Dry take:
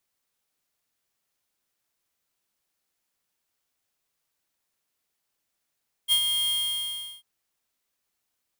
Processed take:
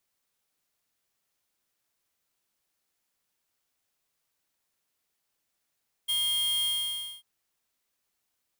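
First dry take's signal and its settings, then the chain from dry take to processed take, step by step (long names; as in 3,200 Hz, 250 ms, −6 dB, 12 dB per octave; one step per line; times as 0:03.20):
note with an ADSR envelope square 3,230 Hz, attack 41 ms, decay 78 ms, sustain −6 dB, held 0.41 s, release 734 ms −19.5 dBFS
brickwall limiter −27.5 dBFS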